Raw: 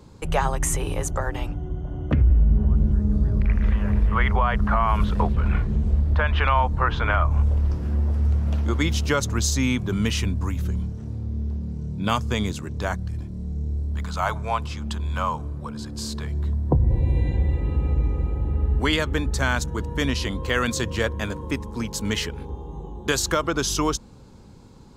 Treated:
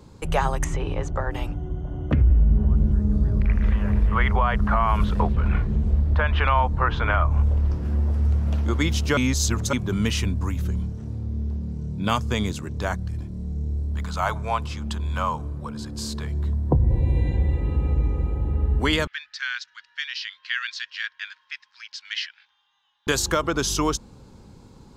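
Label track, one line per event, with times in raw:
0.640000	1.310000	air absorption 170 m
5.190000	7.850000	high shelf 6300 Hz -5 dB
9.170000	9.730000	reverse
19.070000	23.070000	elliptic band-pass 1600–5100 Hz, stop band 60 dB

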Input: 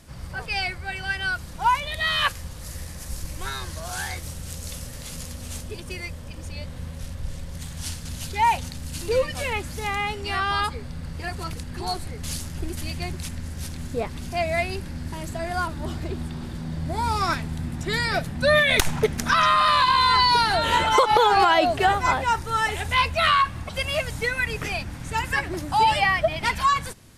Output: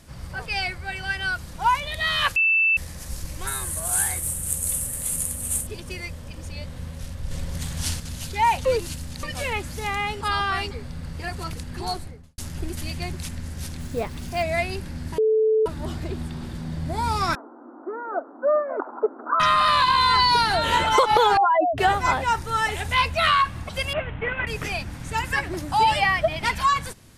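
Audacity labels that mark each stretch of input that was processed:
2.360000	2.770000	bleep 2650 Hz -16 dBFS
3.470000	5.670000	resonant high shelf 6900 Hz +11 dB, Q 3
7.310000	8.000000	gain +5 dB
8.650000	9.230000	reverse
10.210000	10.710000	reverse
11.870000	12.380000	studio fade out
13.800000	14.430000	companded quantiser 6-bit
15.180000	15.660000	bleep 437 Hz -16 dBFS
17.350000	19.400000	Chebyshev band-pass 270–1400 Hz, order 5
21.370000	21.780000	spectral contrast raised exponent 3.5
23.930000	24.470000	CVSD 16 kbps

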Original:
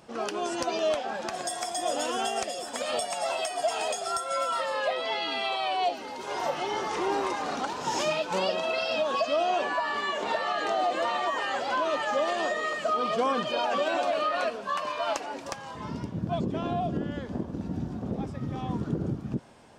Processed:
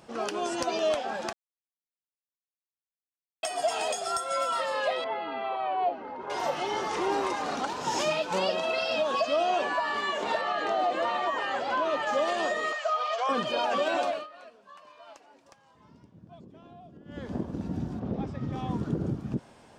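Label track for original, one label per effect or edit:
1.330000	3.430000	mute
5.040000	6.300000	Chebyshev low-pass 1300 Hz
10.410000	12.070000	high shelf 5800 Hz -11 dB
12.720000	13.290000	elliptic band-pass 630–6800 Hz
14.040000	17.280000	dip -20.5 dB, fades 0.23 s
17.990000	18.510000	LPF 3900 Hz -> 6800 Hz

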